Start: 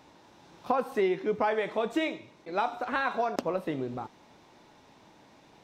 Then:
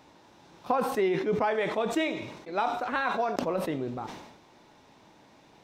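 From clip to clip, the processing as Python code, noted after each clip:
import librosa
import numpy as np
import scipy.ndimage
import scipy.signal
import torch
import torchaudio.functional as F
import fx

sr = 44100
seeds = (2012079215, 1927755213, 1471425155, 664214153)

y = fx.sustainer(x, sr, db_per_s=57.0)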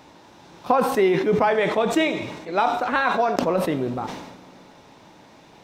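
y = fx.rev_fdn(x, sr, rt60_s=3.1, lf_ratio=1.0, hf_ratio=0.85, size_ms=33.0, drr_db=18.0)
y = y * librosa.db_to_amplitude(7.5)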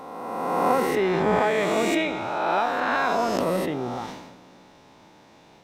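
y = fx.spec_swells(x, sr, rise_s=1.92)
y = y * librosa.db_to_amplitude(-6.5)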